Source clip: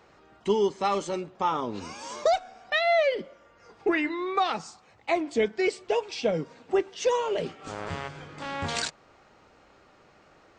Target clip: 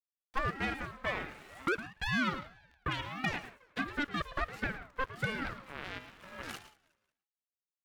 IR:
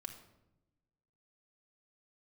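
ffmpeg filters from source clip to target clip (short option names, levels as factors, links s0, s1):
-filter_complex "[0:a]aeval=exprs='0.251*(cos(1*acos(clip(val(0)/0.251,-1,1)))-cos(1*PI/2))+0.0562*(cos(6*acos(clip(val(0)/0.251,-1,1)))-cos(6*PI/2))':c=same,acrusher=bits=4:dc=4:mix=0:aa=0.000001,acrossover=split=300 2000:gain=0.0794 1 0.2[s0][s1][s2];[s0][s1][s2]amix=inputs=3:normalize=0,aecho=1:1:246|492|738:0.075|0.0277|0.0103,asplit=2[s3][s4];[1:a]atrim=start_sample=2205,atrim=end_sample=3528,adelay=148[s5];[s4][s5]afir=irnorm=-1:irlink=0,volume=0.398[s6];[s3][s6]amix=inputs=2:normalize=0,asetrate=59535,aresample=44100,aeval=exprs='val(0)*sin(2*PI*700*n/s+700*0.25/1.5*sin(2*PI*1.5*n/s))':c=same,volume=0.562"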